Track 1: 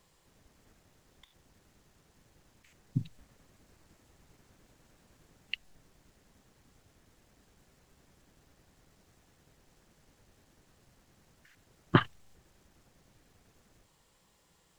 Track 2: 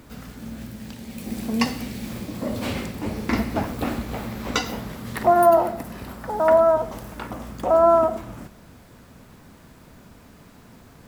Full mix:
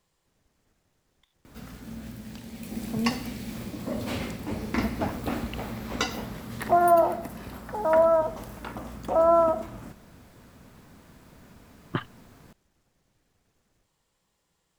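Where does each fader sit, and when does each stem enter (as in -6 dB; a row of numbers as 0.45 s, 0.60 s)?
-6.5 dB, -4.0 dB; 0.00 s, 1.45 s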